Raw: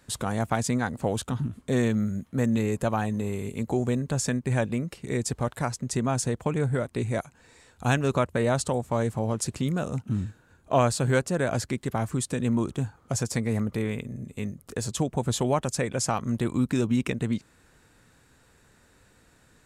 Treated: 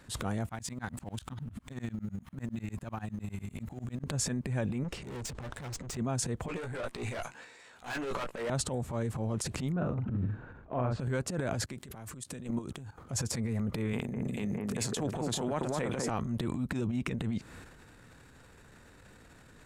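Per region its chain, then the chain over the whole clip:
0.49–4.04 G.711 law mismatch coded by mu + bell 440 Hz -12.5 dB 0.86 oct + dB-ramp tremolo swelling 10 Hz, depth 38 dB
4.84–5.97 LPF 9100 Hz 24 dB/oct + tube stage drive 41 dB, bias 0.45
6.48–8.5 weighting filter A + tube stage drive 35 dB, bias 0.6 + doubler 17 ms -4.5 dB
9.72–11 LPF 1800 Hz + doubler 40 ms -5.5 dB
11.64–12.98 HPF 78 Hz + high shelf 4000 Hz +7 dB + level quantiser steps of 24 dB
13.93–16.1 HPF 170 Hz + echo with dull and thin repeats by turns 0.204 s, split 1800 Hz, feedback 57%, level -2.5 dB
whole clip: tone controls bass +2 dB, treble -5 dB; compressor 6:1, threshold -32 dBFS; transient shaper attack -11 dB, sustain +9 dB; gain +3 dB

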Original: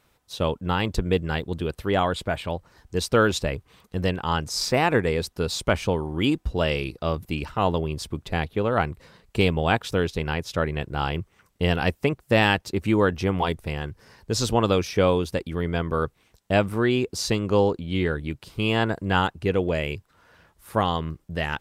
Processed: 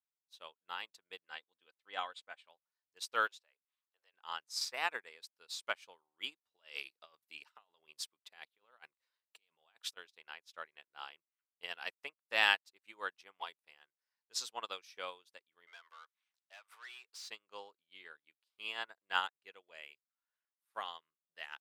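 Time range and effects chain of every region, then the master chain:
1.23–2.44 LPF 8400 Hz + comb 3.9 ms, depth 39% + expander -35 dBFS
3.27–4.14 HPF 420 Hz 24 dB/oct + high shelf 7700 Hz -4 dB + compressor 10:1, threshold -30 dBFS
6.54–9.97 negative-ratio compressor -26 dBFS, ratio -0.5 + high shelf 3500 Hz +3 dB
15.67–17.29 HPF 740 Hz + compressor 3:1, threshold -37 dBFS + overdrive pedal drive 21 dB, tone 5500 Hz, clips at -21.5 dBFS
whole clip: HPF 1100 Hz 12 dB/oct; bell 3700 Hz +2 dB; upward expander 2.5:1, over -44 dBFS; gain -4 dB

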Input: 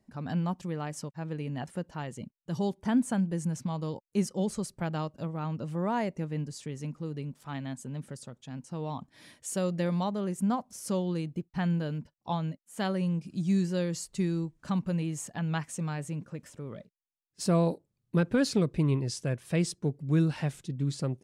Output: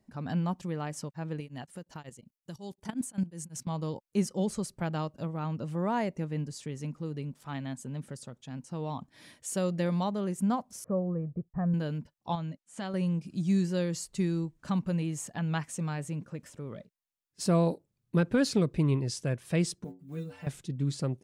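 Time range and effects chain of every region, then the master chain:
1.4–3.67 high shelf 3800 Hz +10.5 dB + level quantiser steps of 13 dB + beating tremolo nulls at 5.5 Hz
10.84–11.74 Gaussian blur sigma 7.2 samples + comb 1.7 ms, depth 58%
12.35–12.94 notch 440 Hz, Q 6.7 + compressor 3:1, threshold -33 dBFS + LPF 9000 Hz 24 dB/oct
19.84–20.47 block floating point 7-bit + bell 4800 Hz -6 dB 0.82 oct + metallic resonator 88 Hz, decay 0.33 s, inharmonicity 0.008
whole clip: dry

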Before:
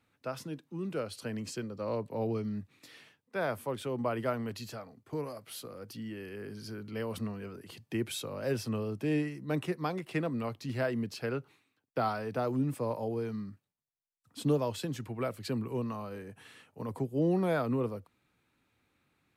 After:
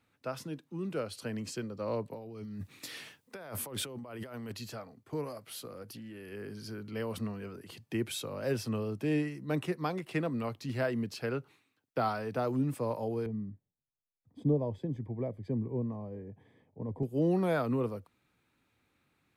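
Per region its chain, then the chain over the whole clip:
2.13–4.52 high shelf 4500 Hz +7 dB + negative-ratio compressor -42 dBFS
5.82–6.32 bell 11000 Hz +9.5 dB 0.28 oct + compressor, threshold -42 dBFS + Doppler distortion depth 0.12 ms
13.26–17.03 running mean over 32 samples + low shelf 68 Hz +10.5 dB
whole clip: dry

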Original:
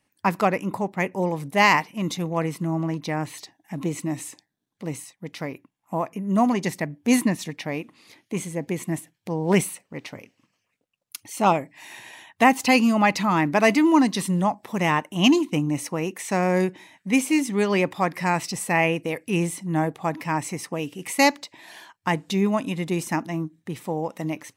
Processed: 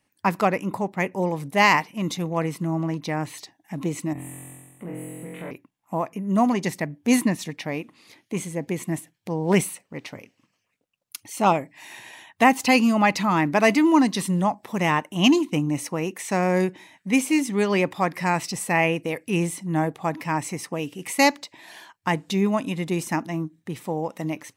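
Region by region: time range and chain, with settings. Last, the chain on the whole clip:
4.13–5.51 flutter echo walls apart 3.9 m, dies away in 1.3 s + compressor 2.5:1, threshold -34 dBFS + Butterworth band-stop 5100 Hz, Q 0.75
whole clip: dry

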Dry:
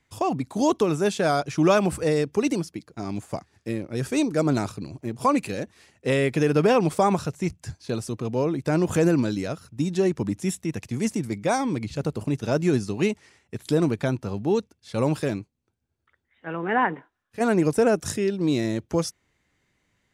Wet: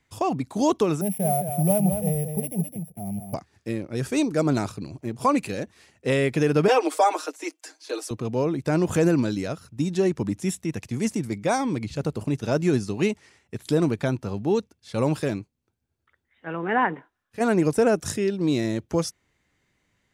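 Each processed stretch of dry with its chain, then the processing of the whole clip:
1.01–3.34 sample sorter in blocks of 8 samples + EQ curve 110 Hz 0 dB, 190 Hz +6 dB, 280 Hz -20 dB, 720 Hz +1 dB, 1200 Hz -28 dB, 2400 Hz -12 dB, 4800 Hz -29 dB, 7200 Hz -17 dB, 10000 Hz +5 dB + echo 0.212 s -7.5 dB
6.68–8.11 steep high-pass 270 Hz 96 dB/oct + low shelf 380 Hz -7 dB + comb 6.4 ms, depth 88%
whole clip: dry

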